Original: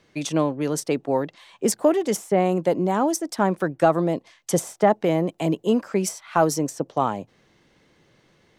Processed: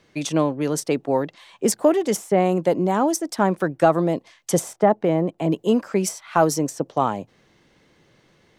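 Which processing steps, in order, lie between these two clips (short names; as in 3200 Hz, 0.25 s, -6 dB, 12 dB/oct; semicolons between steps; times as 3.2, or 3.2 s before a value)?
4.73–5.52 high shelf 2600 Hz -11.5 dB; gain +1.5 dB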